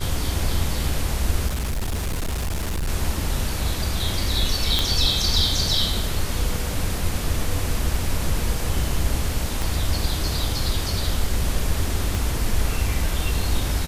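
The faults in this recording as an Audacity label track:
1.470000	2.890000	clipping −21.5 dBFS
4.790000	4.790000	click
9.620000	9.620000	click
12.150000	12.150000	click

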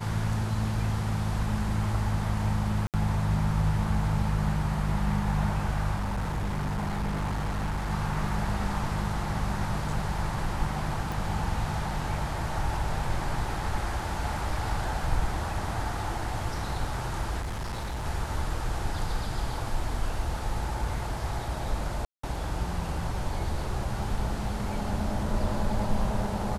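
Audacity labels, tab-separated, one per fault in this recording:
2.870000	2.940000	drop-out 68 ms
5.950000	7.910000	clipping −26 dBFS
11.120000	11.120000	click
17.400000	18.060000	clipping −29.5 dBFS
22.050000	22.230000	drop-out 184 ms

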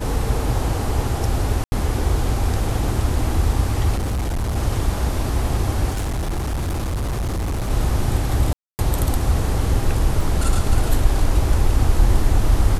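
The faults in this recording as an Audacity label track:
1.640000	1.720000	drop-out 80 ms
3.950000	4.570000	clipping −19 dBFS
5.900000	7.710000	clipping −20 dBFS
8.530000	8.790000	drop-out 259 ms
10.210000	10.210000	drop-out 2.1 ms

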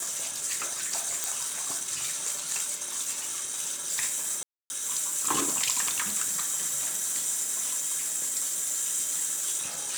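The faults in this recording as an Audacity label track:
1.240000	1.240000	click
4.430000	4.700000	drop-out 270 ms

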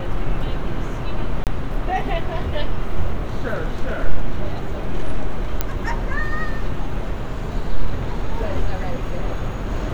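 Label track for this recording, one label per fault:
1.440000	1.470000	drop-out 28 ms
5.610000	5.610000	click −5 dBFS

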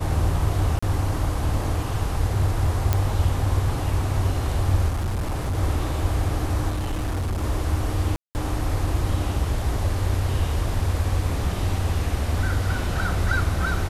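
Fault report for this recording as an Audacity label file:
0.790000	0.820000	drop-out 35 ms
2.930000	2.930000	click −7 dBFS
4.880000	5.580000	clipping −21.5 dBFS
6.690000	7.440000	clipping −22 dBFS
8.160000	8.350000	drop-out 189 ms

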